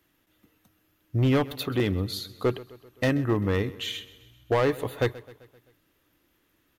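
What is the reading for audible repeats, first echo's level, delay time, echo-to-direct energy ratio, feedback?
4, -19.0 dB, 0.13 s, -17.5 dB, 57%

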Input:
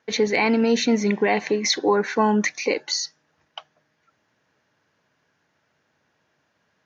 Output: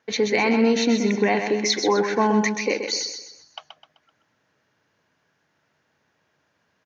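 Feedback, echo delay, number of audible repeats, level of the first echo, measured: 40%, 0.128 s, 4, -7.0 dB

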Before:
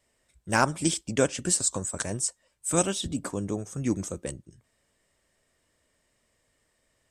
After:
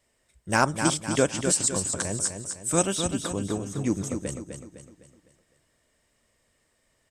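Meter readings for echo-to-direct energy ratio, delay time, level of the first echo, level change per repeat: -6.0 dB, 0.254 s, -7.0 dB, -7.5 dB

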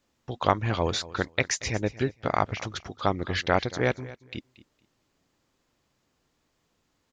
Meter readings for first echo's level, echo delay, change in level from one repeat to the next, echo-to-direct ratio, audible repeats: -18.0 dB, 0.231 s, -14.5 dB, -18.0 dB, 2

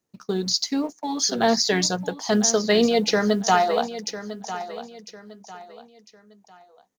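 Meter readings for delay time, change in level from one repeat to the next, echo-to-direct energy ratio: 1.001 s, -9.5 dB, -12.5 dB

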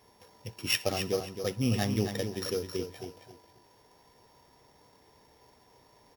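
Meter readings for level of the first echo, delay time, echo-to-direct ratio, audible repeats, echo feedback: -8.0 dB, 0.267 s, -7.5 dB, 3, 24%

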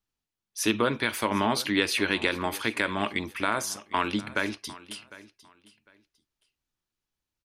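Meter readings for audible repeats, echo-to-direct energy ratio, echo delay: 2, -19.0 dB, 0.753 s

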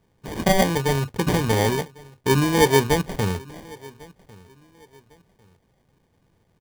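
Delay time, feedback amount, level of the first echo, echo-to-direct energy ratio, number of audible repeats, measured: 1.1 s, 30%, -23.5 dB, -23.0 dB, 2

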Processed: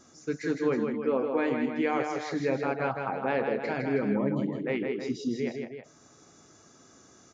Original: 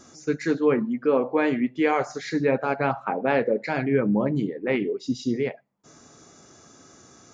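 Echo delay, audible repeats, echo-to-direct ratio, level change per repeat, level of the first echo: 0.16 s, 2, -3.5 dB, -4.5 dB, -5.0 dB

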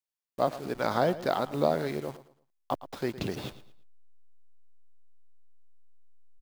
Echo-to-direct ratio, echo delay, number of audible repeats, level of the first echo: -15.0 dB, 0.112 s, 2, -15.5 dB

